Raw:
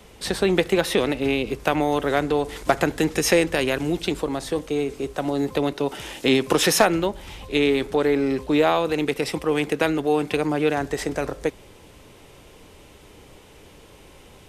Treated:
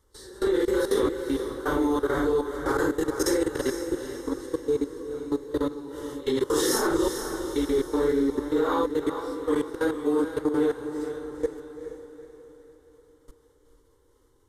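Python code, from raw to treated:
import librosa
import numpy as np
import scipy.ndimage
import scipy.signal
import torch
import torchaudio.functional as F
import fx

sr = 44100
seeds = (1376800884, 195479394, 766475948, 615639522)

y = fx.phase_scramble(x, sr, seeds[0], window_ms=200)
y = fx.low_shelf(y, sr, hz=380.0, db=4.5)
y = fx.notch(y, sr, hz=4800.0, q=28.0)
y = fx.level_steps(y, sr, step_db=21)
y = fx.fixed_phaser(y, sr, hz=680.0, stages=6)
y = fx.echo_diffused(y, sr, ms=455, feedback_pct=45, wet_db=-8)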